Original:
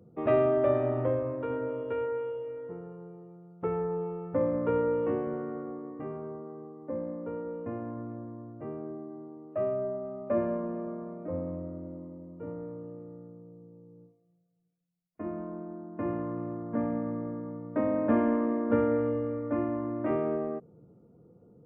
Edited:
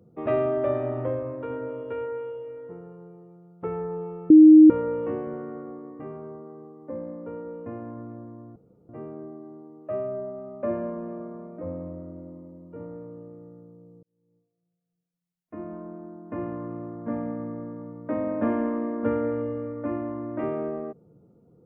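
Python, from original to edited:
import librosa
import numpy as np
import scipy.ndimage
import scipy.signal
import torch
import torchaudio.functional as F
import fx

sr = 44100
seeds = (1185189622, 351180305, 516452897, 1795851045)

y = fx.edit(x, sr, fx.bleep(start_s=4.3, length_s=0.4, hz=311.0, db=-7.0),
    fx.insert_room_tone(at_s=8.56, length_s=0.33),
    fx.fade_in_span(start_s=13.7, length_s=1.75), tone=tone)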